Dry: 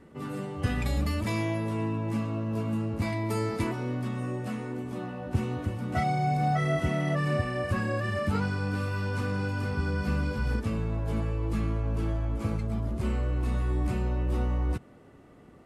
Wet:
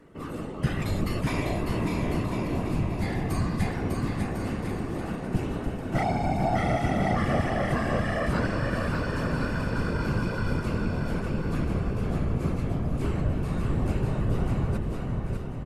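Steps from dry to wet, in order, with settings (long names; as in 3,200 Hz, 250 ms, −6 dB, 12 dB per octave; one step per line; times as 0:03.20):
random phases in short frames
0:02.74–0:03.75: frequency shifter −220 Hz
on a send: bouncing-ball delay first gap 600 ms, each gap 0.75×, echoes 5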